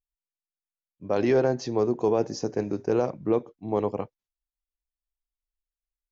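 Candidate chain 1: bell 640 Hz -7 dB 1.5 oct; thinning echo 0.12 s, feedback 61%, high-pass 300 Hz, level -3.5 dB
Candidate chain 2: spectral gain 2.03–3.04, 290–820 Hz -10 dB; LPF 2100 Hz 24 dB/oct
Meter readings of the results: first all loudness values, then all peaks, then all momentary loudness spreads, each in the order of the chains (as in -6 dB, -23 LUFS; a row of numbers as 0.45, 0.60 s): -29.0, -28.0 LUFS; -14.5, -12.0 dBFS; 10, 12 LU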